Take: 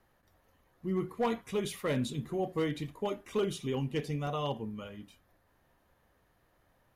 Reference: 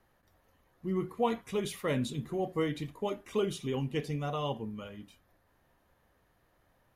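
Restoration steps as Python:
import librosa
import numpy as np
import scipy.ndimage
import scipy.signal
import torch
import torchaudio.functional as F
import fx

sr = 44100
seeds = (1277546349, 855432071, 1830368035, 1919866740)

y = fx.fix_declip(x, sr, threshold_db=-24.0)
y = fx.fix_interpolate(y, sr, at_s=(2.96, 4.27), length_ms=1.0)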